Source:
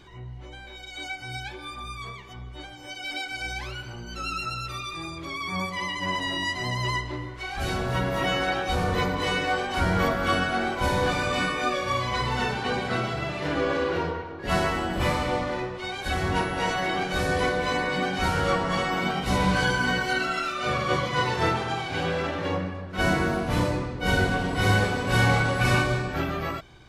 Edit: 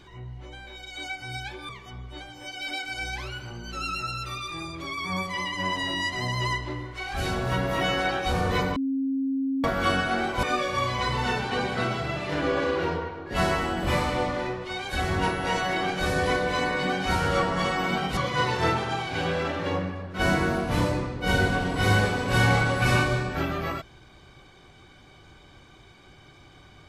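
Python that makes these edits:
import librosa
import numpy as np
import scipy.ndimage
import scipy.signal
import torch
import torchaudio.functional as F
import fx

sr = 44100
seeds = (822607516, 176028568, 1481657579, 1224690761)

y = fx.edit(x, sr, fx.cut(start_s=1.69, length_s=0.43),
    fx.bleep(start_s=9.19, length_s=0.88, hz=269.0, db=-23.5),
    fx.cut(start_s=10.86, length_s=0.7),
    fx.cut(start_s=19.3, length_s=1.66), tone=tone)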